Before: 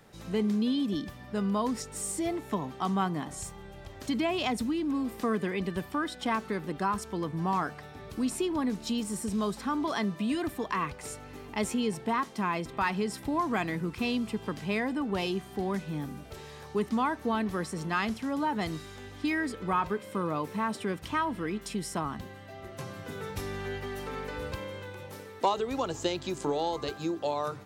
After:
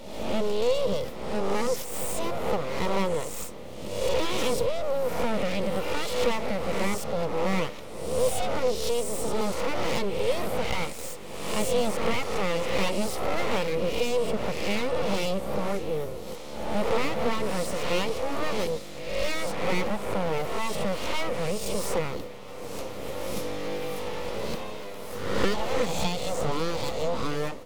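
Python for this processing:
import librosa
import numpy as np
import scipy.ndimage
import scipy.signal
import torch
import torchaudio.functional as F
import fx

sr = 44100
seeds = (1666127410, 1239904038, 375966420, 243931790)

p1 = fx.spec_swells(x, sr, rise_s=0.96)
p2 = np.abs(p1)
p3 = fx.graphic_eq_31(p2, sr, hz=(200, 500, 1600), db=(5, 12, -9))
p4 = np.clip(10.0 ** (28.0 / 20.0) * p3, -1.0, 1.0) / 10.0 ** (28.0 / 20.0)
y = p3 + (p4 * 10.0 ** (-6.0 / 20.0))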